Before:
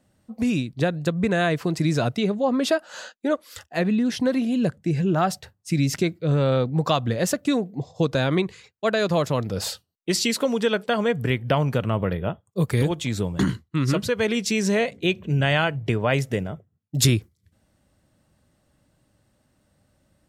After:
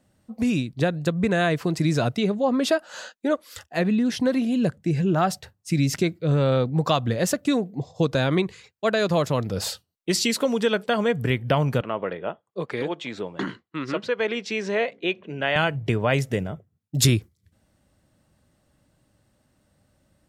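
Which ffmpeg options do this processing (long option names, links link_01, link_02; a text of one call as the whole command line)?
ffmpeg -i in.wav -filter_complex "[0:a]asettb=1/sr,asplit=3[link_01][link_02][link_03];[link_01]atrim=end=11.814[link_04];[link_02]atrim=start=11.81:end=15.56,asetpts=PTS-STARTPTS,afade=type=in:duration=0.004:curve=qsin,afade=type=out:start_time=3.746:duration=0.004:curve=qsin,highpass=350,lowpass=3200[link_05];[link_03]atrim=start=15.556[link_06];[link_04][link_05]acrossfade=duration=0.004:curve1=hsin:curve2=qsin[link_07];[link_07][link_06]acrossfade=duration=0.004:curve1=qsin:curve2=hsin" out.wav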